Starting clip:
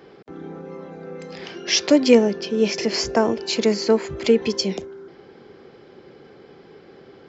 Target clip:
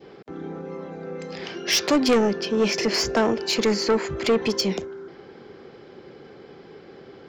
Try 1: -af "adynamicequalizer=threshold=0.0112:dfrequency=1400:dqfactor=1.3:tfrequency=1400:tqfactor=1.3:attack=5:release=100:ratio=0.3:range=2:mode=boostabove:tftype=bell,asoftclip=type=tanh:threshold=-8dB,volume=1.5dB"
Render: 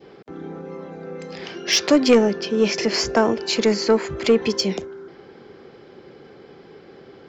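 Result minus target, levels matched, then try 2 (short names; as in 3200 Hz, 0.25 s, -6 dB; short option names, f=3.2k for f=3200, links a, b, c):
soft clip: distortion -8 dB
-af "adynamicequalizer=threshold=0.0112:dfrequency=1400:dqfactor=1.3:tfrequency=1400:tqfactor=1.3:attack=5:release=100:ratio=0.3:range=2:mode=boostabove:tftype=bell,asoftclip=type=tanh:threshold=-16dB,volume=1.5dB"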